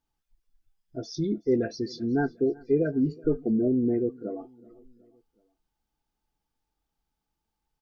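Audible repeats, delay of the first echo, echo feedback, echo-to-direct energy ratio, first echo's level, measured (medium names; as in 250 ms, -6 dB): 2, 373 ms, 53%, -22.5 dB, -24.0 dB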